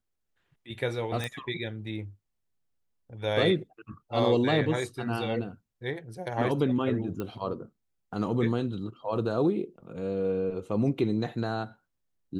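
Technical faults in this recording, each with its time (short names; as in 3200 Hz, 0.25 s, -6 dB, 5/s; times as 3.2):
1.24 pop -18 dBFS
7.2 pop -21 dBFS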